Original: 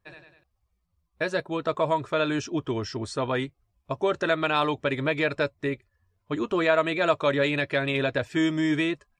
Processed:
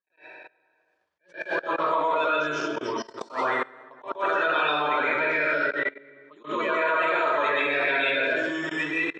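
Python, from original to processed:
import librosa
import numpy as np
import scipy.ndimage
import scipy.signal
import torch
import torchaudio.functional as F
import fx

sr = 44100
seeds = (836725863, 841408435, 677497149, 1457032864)

y = fx.spec_quant(x, sr, step_db=30)
y = scipy.signal.sosfilt(scipy.signal.butter(2, 4200.0, 'lowpass', fs=sr, output='sos'), y)
y = fx.rev_plate(y, sr, seeds[0], rt60_s=1.3, hf_ratio=0.65, predelay_ms=105, drr_db=-9.5)
y = fx.level_steps(y, sr, step_db=22)
y = scipy.signal.sosfilt(scipy.signal.butter(2, 500.0, 'highpass', fs=sr, output='sos'), y)
y = fx.attack_slew(y, sr, db_per_s=230.0)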